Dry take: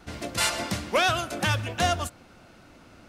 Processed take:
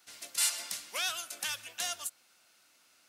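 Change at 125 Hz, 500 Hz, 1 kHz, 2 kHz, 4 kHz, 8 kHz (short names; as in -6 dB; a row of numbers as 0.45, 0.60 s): -36.0, -21.5, -17.5, -11.0, -5.5, 0.0 dB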